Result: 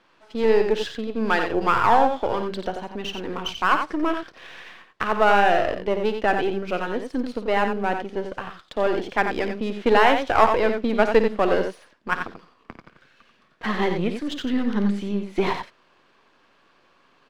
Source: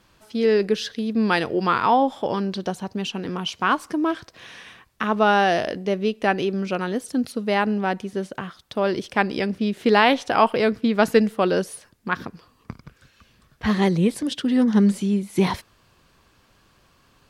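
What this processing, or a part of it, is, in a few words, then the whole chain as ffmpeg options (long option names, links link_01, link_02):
crystal radio: -filter_complex "[0:a]asettb=1/sr,asplit=3[link_01][link_02][link_03];[link_01]atrim=end=13.924[link_04];[link_02]atrim=start=13.92:end=15.22,asetpts=PTS-STARTPTS,afade=type=in:duration=0.004:curve=qsin,afade=type=out:start_time=1.296:duration=0.004:curve=qsin,equalizer=frequency=640:width_type=o:width=0.82:gain=-11[link_05];[link_03]atrim=start=15.216[link_06];[link_04][link_05]acrossfade=duration=0.004:curve1=hsin:curve2=qsin[link_07];[link_07][link_06]acrossfade=duration=0.004:curve1=qsin:curve2=hsin,highpass=300,lowpass=3200,aeval=exprs='if(lt(val(0),0),0.447*val(0),val(0))':channel_layout=same,aecho=1:1:54|89:0.224|0.447,volume=3.5dB"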